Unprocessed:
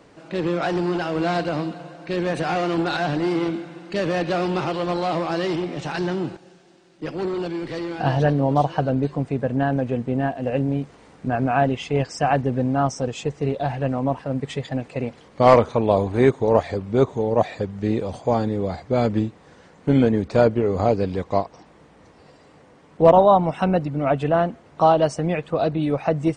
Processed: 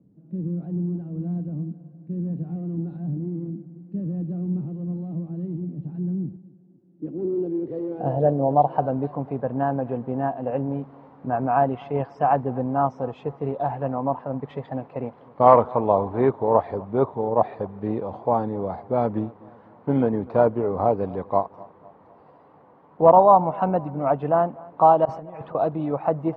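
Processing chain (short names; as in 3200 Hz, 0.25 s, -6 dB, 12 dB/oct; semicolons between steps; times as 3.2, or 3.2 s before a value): 3.1–3.76 median filter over 15 samples; HPF 90 Hz; bell 3800 Hz +9.5 dB 1.5 oct; 25.05–25.55 negative-ratio compressor -29 dBFS, ratio -0.5; low-pass sweep 190 Hz -> 970 Hz, 6.45–8.95; on a send: darkening echo 0.249 s, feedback 50%, low-pass 3700 Hz, level -22.5 dB; on the sum: gain -5 dB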